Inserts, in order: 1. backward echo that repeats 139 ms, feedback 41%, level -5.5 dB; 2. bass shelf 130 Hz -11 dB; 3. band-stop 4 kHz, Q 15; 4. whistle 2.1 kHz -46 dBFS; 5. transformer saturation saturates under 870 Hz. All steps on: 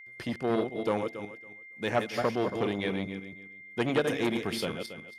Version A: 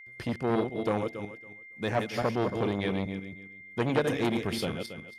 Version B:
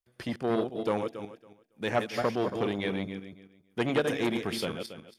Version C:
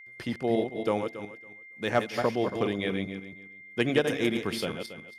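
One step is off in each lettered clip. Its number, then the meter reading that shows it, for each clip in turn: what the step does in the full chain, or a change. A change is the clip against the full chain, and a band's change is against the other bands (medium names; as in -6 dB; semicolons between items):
2, 125 Hz band +5.0 dB; 4, momentary loudness spread change -1 LU; 5, momentary loudness spread change +2 LU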